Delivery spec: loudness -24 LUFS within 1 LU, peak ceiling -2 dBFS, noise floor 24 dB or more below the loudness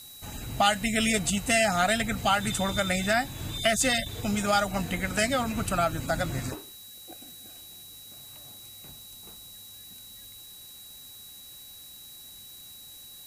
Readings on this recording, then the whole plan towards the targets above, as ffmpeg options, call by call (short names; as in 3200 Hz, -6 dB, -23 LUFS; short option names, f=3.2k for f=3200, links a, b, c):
steady tone 3900 Hz; tone level -48 dBFS; noise floor -47 dBFS; noise floor target -50 dBFS; loudness -26.0 LUFS; peak -10.5 dBFS; loudness target -24.0 LUFS
-> -af "bandreject=f=3.9k:w=30"
-af "afftdn=nr=6:nf=-47"
-af "volume=2dB"